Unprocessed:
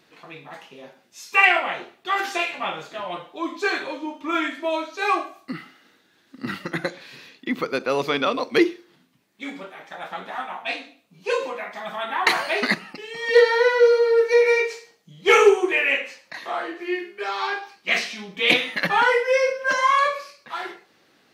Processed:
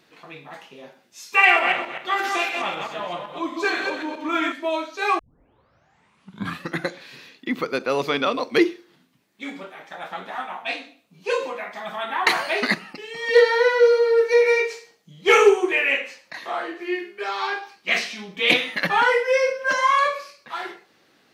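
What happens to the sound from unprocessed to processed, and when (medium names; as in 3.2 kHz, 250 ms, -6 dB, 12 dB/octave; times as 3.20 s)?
1.34–4.52 s: backward echo that repeats 128 ms, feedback 40%, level -4.5 dB
5.19 s: tape start 1.52 s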